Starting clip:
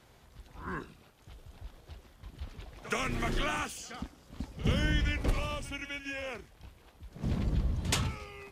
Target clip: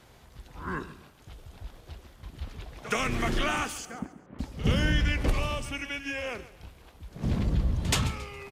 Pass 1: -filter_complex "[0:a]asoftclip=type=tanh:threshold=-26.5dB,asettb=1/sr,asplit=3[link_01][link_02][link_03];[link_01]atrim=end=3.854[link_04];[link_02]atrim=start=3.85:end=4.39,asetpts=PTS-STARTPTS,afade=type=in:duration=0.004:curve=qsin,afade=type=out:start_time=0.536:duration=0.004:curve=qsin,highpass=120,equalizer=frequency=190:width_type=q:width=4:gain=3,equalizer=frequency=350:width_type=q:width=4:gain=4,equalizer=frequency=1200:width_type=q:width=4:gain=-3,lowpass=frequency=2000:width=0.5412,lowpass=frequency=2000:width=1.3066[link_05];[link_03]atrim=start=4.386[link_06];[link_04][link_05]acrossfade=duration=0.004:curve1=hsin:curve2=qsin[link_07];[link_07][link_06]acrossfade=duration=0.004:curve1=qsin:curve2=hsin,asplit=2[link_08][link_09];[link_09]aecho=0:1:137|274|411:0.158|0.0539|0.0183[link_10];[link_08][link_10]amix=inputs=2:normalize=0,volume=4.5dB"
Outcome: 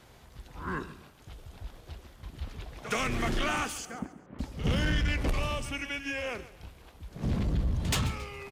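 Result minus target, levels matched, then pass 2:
soft clipping: distortion +13 dB
-filter_complex "[0:a]asoftclip=type=tanh:threshold=-17dB,asettb=1/sr,asplit=3[link_01][link_02][link_03];[link_01]atrim=end=3.854[link_04];[link_02]atrim=start=3.85:end=4.39,asetpts=PTS-STARTPTS,afade=type=in:duration=0.004:curve=qsin,afade=type=out:start_time=0.536:duration=0.004:curve=qsin,highpass=120,equalizer=frequency=190:width_type=q:width=4:gain=3,equalizer=frequency=350:width_type=q:width=4:gain=4,equalizer=frequency=1200:width_type=q:width=4:gain=-3,lowpass=frequency=2000:width=0.5412,lowpass=frequency=2000:width=1.3066[link_05];[link_03]atrim=start=4.386[link_06];[link_04][link_05]acrossfade=duration=0.004:curve1=hsin:curve2=qsin[link_07];[link_07][link_06]acrossfade=duration=0.004:curve1=qsin:curve2=hsin,asplit=2[link_08][link_09];[link_09]aecho=0:1:137|274|411:0.158|0.0539|0.0183[link_10];[link_08][link_10]amix=inputs=2:normalize=0,volume=4.5dB"

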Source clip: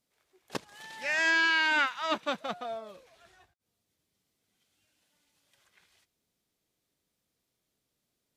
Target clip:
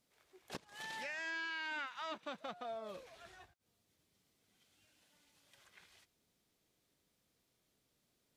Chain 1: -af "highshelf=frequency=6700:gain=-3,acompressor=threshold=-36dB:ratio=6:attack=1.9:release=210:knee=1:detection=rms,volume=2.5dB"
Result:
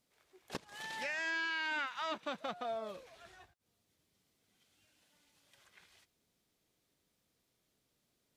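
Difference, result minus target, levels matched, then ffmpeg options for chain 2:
downward compressor: peak gain reduction −5 dB
-af "highshelf=frequency=6700:gain=-3,acompressor=threshold=-42dB:ratio=6:attack=1.9:release=210:knee=1:detection=rms,volume=2.5dB"

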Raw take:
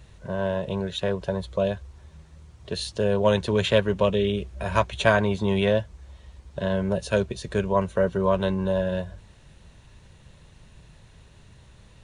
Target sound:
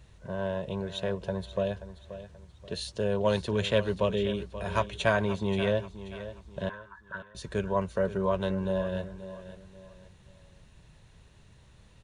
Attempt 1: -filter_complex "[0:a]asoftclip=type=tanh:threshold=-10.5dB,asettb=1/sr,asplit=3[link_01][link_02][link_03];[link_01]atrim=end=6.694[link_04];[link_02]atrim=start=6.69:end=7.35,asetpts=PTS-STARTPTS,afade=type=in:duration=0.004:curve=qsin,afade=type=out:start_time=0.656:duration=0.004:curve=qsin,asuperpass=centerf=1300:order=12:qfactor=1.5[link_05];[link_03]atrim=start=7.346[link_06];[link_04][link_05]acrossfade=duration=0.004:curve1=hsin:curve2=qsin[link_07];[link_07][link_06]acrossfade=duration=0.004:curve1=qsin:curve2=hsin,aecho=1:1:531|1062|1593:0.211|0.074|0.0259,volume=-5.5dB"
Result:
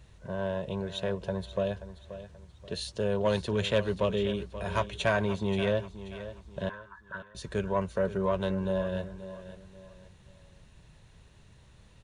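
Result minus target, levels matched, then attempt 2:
soft clipping: distortion +16 dB
-filter_complex "[0:a]asoftclip=type=tanh:threshold=-1dB,asettb=1/sr,asplit=3[link_01][link_02][link_03];[link_01]atrim=end=6.694[link_04];[link_02]atrim=start=6.69:end=7.35,asetpts=PTS-STARTPTS,afade=type=in:duration=0.004:curve=qsin,afade=type=out:start_time=0.656:duration=0.004:curve=qsin,asuperpass=centerf=1300:order=12:qfactor=1.5[link_05];[link_03]atrim=start=7.346[link_06];[link_04][link_05]acrossfade=duration=0.004:curve1=hsin:curve2=qsin[link_07];[link_07][link_06]acrossfade=duration=0.004:curve1=qsin:curve2=hsin,aecho=1:1:531|1062|1593:0.211|0.074|0.0259,volume=-5.5dB"

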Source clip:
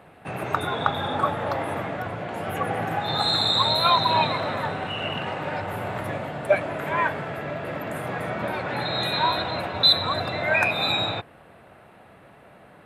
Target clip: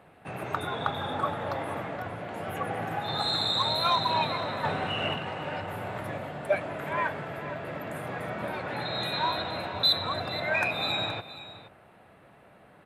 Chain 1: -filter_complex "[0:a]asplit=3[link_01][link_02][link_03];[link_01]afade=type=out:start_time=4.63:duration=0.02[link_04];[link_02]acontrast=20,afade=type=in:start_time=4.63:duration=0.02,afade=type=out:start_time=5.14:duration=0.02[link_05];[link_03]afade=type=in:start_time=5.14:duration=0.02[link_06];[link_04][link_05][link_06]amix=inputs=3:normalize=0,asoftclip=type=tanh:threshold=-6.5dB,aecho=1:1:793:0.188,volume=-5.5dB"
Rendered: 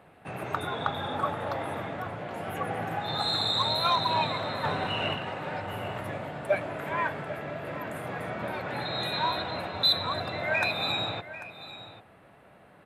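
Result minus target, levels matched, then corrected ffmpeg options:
echo 321 ms late
-filter_complex "[0:a]asplit=3[link_01][link_02][link_03];[link_01]afade=type=out:start_time=4.63:duration=0.02[link_04];[link_02]acontrast=20,afade=type=in:start_time=4.63:duration=0.02,afade=type=out:start_time=5.14:duration=0.02[link_05];[link_03]afade=type=in:start_time=5.14:duration=0.02[link_06];[link_04][link_05][link_06]amix=inputs=3:normalize=0,asoftclip=type=tanh:threshold=-6.5dB,aecho=1:1:472:0.188,volume=-5.5dB"

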